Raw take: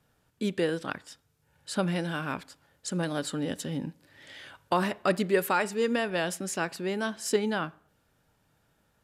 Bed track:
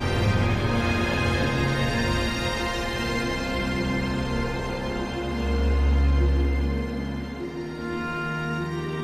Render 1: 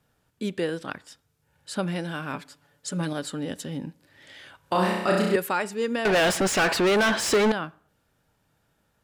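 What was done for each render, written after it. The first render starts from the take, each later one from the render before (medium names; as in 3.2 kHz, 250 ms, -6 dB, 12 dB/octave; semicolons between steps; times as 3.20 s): 2.33–3.13 s: comb 6.9 ms, depth 71%; 4.60–5.36 s: flutter echo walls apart 5.6 m, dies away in 0.98 s; 6.05–7.52 s: overdrive pedal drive 34 dB, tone 2.8 kHz, clips at -13 dBFS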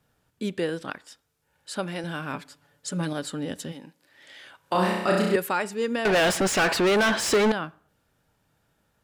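0.90–2.04 s: peaking EQ 110 Hz -10 dB 1.7 oct; 3.71–4.73 s: high-pass 920 Hz -> 220 Hz 6 dB/octave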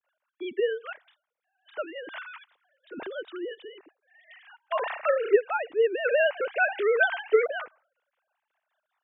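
formants replaced by sine waves; harmonic tremolo 5.2 Hz, depth 50%, crossover 540 Hz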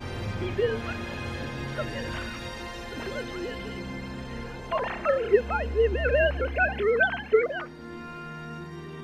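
add bed track -10.5 dB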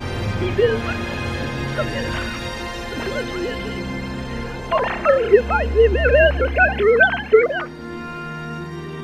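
trim +9 dB; peak limiter -1 dBFS, peak gain reduction 1.5 dB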